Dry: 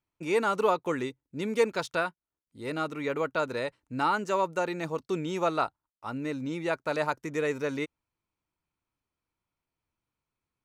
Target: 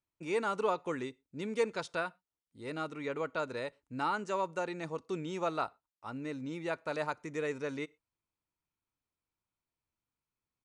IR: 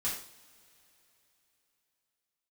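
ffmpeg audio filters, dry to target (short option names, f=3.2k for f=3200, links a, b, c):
-filter_complex "[0:a]asplit=2[a][b];[1:a]atrim=start_sample=2205,afade=t=out:st=0.18:d=0.01,atrim=end_sample=8379[c];[b][c]afir=irnorm=-1:irlink=0,volume=-26.5dB[d];[a][d]amix=inputs=2:normalize=0,aresample=22050,aresample=44100,volume=-6.5dB"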